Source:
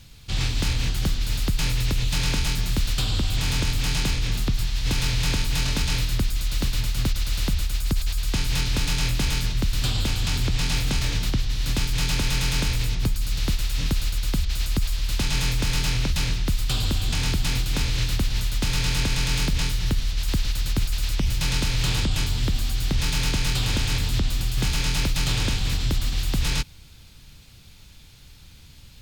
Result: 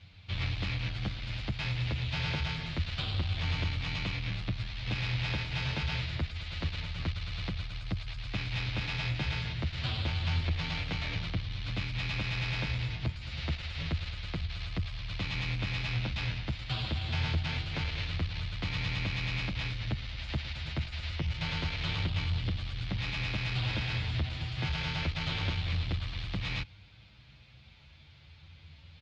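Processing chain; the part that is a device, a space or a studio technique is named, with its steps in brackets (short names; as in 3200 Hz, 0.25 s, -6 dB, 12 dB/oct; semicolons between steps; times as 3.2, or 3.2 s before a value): barber-pole flanger into a guitar amplifier (endless flanger 8.2 ms +0.27 Hz; soft clip -20.5 dBFS, distortion -17 dB; speaker cabinet 76–4000 Hz, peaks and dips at 86 Hz +8 dB, 250 Hz -7 dB, 400 Hz -5 dB, 660 Hz +3 dB, 2200 Hz +4 dB); gain -2 dB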